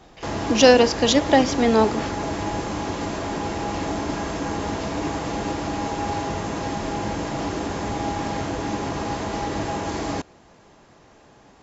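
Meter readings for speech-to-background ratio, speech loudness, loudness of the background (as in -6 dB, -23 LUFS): 9.5 dB, -18.0 LUFS, -27.5 LUFS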